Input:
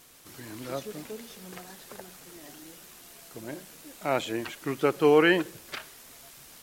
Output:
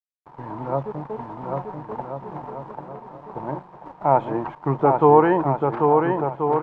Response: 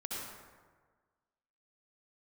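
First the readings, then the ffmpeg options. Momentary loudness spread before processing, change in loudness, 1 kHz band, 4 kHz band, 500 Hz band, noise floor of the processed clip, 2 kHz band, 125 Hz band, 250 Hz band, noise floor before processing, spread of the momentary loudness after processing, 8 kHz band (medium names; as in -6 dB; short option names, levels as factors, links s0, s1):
25 LU, +5.5 dB, +15.0 dB, under -15 dB, +7.0 dB, -49 dBFS, -4.0 dB, +13.5 dB, +6.0 dB, -51 dBFS, 21 LU, under -25 dB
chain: -filter_complex "[0:a]asplit=2[s0][s1];[s1]alimiter=limit=0.1:level=0:latency=1:release=407,volume=0.841[s2];[s0][s2]amix=inputs=2:normalize=0,acrusher=bits=5:mix=0:aa=0.000001,lowpass=f=920:t=q:w=6,equalizer=f=140:w=5.1:g=12,aecho=1:1:790|1382|1827|2160|2410:0.631|0.398|0.251|0.158|0.1"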